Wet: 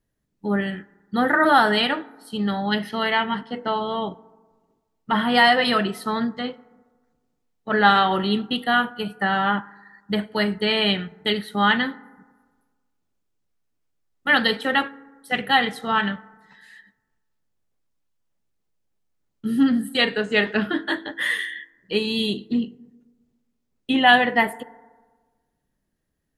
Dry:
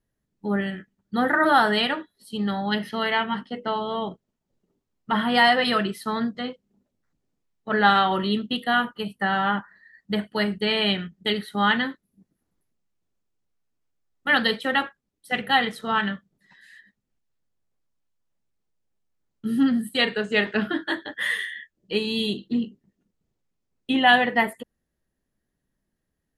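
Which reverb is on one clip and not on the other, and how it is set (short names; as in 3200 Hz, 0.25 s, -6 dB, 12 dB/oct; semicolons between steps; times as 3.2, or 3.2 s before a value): FDN reverb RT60 1.4 s, low-frequency decay 1×, high-frequency decay 0.35×, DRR 18.5 dB; gain +2 dB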